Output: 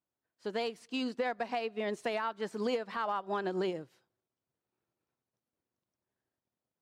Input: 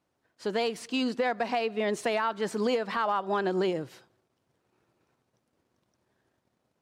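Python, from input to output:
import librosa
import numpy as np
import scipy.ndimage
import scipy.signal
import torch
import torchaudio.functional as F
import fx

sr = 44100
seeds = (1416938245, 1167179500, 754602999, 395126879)

y = fx.upward_expand(x, sr, threshold_db=-48.0, expansion=1.5)
y = y * 10.0 ** (-4.5 / 20.0)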